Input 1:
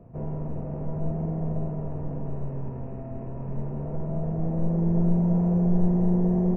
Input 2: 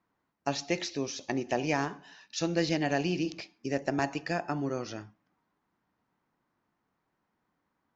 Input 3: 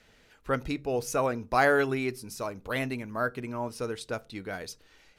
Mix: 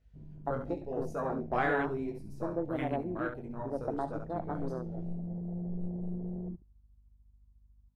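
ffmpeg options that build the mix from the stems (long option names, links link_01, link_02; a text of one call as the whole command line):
ffmpeg -i stem1.wav -i stem2.wav -i stem3.wav -filter_complex "[0:a]aeval=exprs='0.282*(cos(1*acos(clip(val(0)/0.282,-1,1)))-cos(1*PI/2))+0.0112*(cos(8*acos(clip(val(0)/0.282,-1,1)))-cos(8*PI/2))':channel_layout=same,volume=-16dB,asplit=2[link_01][link_02];[link_02]volume=-18.5dB[link_03];[1:a]lowpass=frequency=1200:width=0.5412,lowpass=frequency=1200:width=1.3066,lowshelf=frequency=210:gain=-11.5,aeval=exprs='val(0)+0.002*(sin(2*PI*50*n/s)+sin(2*PI*2*50*n/s)/2+sin(2*PI*3*50*n/s)/3+sin(2*PI*4*50*n/s)/4+sin(2*PI*5*50*n/s)/5)':channel_layout=same,volume=-2.5dB[link_04];[2:a]flanger=delay=18.5:depth=5.6:speed=0.93,volume=-5dB,asplit=2[link_05][link_06];[link_06]volume=-7dB[link_07];[link_03][link_07]amix=inputs=2:normalize=0,aecho=0:1:68|136|204|272:1|0.26|0.0676|0.0176[link_08];[link_01][link_04][link_05][link_08]amix=inputs=4:normalize=0,afwtdn=0.0126" out.wav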